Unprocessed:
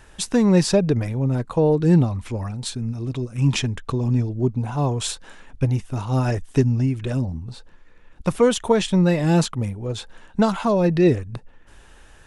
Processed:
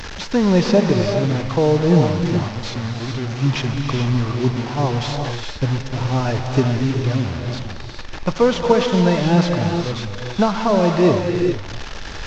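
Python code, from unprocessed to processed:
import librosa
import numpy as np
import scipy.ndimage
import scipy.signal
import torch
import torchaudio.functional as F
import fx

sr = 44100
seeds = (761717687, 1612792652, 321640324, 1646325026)

y = fx.delta_mod(x, sr, bps=32000, step_db=-25.0)
y = fx.dynamic_eq(y, sr, hz=860.0, q=0.96, threshold_db=-33.0, ratio=4.0, max_db=4)
y = fx.rev_gated(y, sr, seeds[0], gate_ms=460, shape='rising', drr_db=3.0)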